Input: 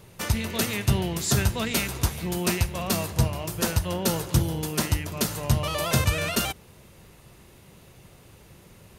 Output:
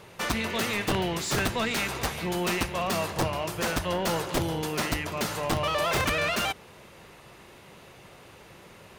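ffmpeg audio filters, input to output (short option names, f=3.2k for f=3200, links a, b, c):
-filter_complex "[0:a]aeval=exprs='(mod(5.62*val(0)+1,2)-1)/5.62':c=same,asplit=2[a][b];[b]highpass=f=720:p=1,volume=16dB,asoftclip=type=tanh:threshold=-14.5dB[c];[a][c]amix=inputs=2:normalize=0,lowpass=f=2.3k:p=1,volume=-6dB,volume=-2dB"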